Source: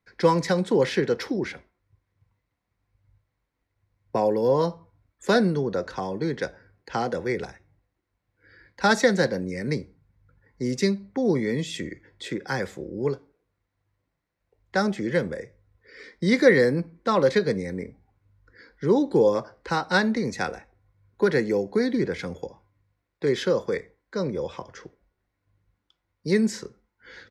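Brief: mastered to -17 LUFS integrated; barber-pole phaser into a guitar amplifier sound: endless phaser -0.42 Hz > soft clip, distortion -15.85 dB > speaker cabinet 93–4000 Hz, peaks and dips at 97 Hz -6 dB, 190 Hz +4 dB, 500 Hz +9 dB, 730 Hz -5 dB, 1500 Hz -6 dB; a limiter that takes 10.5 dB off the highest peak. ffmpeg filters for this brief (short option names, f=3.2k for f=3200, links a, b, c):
-filter_complex "[0:a]alimiter=limit=-15dB:level=0:latency=1,asplit=2[a][b];[b]afreqshift=-0.42[c];[a][c]amix=inputs=2:normalize=1,asoftclip=threshold=-21.5dB,highpass=93,equalizer=f=97:t=q:w=4:g=-6,equalizer=f=190:t=q:w=4:g=4,equalizer=f=500:t=q:w=4:g=9,equalizer=f=730:t=q:w=4:g=-5,equalizer=f=1.5k:t=q:w=4:g=-6,lowpass=f=4k:w=0.5412,lowpass=f=4k:w=1.3066,volume=11dB"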